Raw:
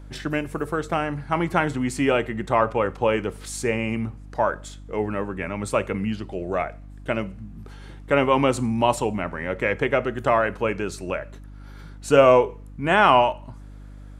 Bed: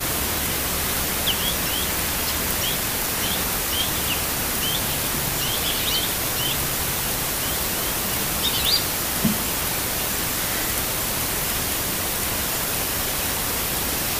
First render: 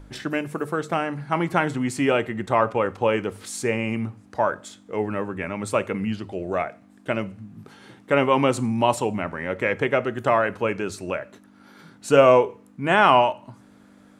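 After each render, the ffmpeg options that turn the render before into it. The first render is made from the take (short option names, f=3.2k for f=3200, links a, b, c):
-af "bandreject=f=50:t=h:w=4,bandreject=f=100:t=h:w=4,bandreject=f=150:t=h:w=4"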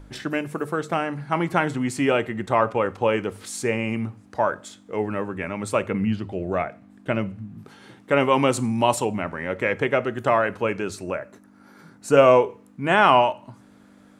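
-filter_complex "[0:a]asettb=1/sr,asplit=3[a][b][c];[a]atrim=end=5.824[d];[b]atrim=start=5.82:end=7.58,asetpts=PTS-STARTPTS,afade=t=in:d=0.004:c=qsin,afade=t=out:st=1.756:d=0.004:c=qsin,bass=f=250:g=5,treble=f=4k:g=-5[e];[c]atrim=start=7.576[f];[d][e]acrossfade=d=0.004:c1=hsin:c2=qsin[g];[g][f]acrossfade=d=0.004:c1=qsin:c2=hsin,asettb=1/sr,asplit=3[h][i][j];[h]atrim=end=8.204[k];[i]atrim=start=8.2:end=9.05,asetpts=PTS-STARTPTS,afade=t=in:d=0.004:c=qsin,afade=t=out:st=0.846:d=0.004:c=qsin,highshelf=f=4.7k:g=5.5[l];[j]atrim=start=9.046[m];[k][l]acrossfade=d=0.004:c1=hsin:c2=qsin[n];[n][m]acrossfade=d=0.004:c1=qsin:c2=hsin,asettb=1/sr,asplit=3[o][p][q];[o]atrim=end=11.034[r];[p]atrim=start=11.03:end=12.17,asetpts=PTS-STARTPTS,afade=t=in:d=0.004:c=qsin,afade=t=out:st=1.136:d=0.004:c=qsin,equalizer=f=3.3k:t=o:w=0.79:g=-9[s];[q]atrim=start=12.166[t];[r][s]acrossfade=d=0.004:c1=hsin:c2=qsin[u];[u][t]acrossfade=d=0.004:c1=qsin:c2=hsin"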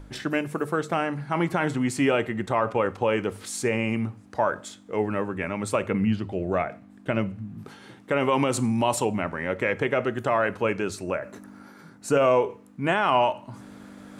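-af "areverse,acompressor=mode=upward:threshold=-35dB:ratio=2.5,areverse,alimiter=limit=-11.5dB:level=0:latency=1:release=55"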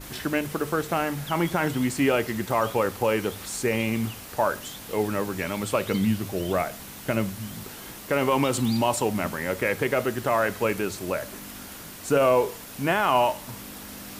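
-filter_complex "[1:a]volume=-17.5dB[a];[0:a][a]amix=inputs=2:normalize=0"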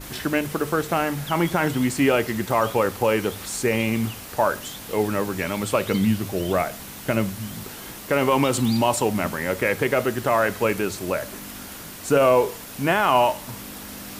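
-af "volume=3dB"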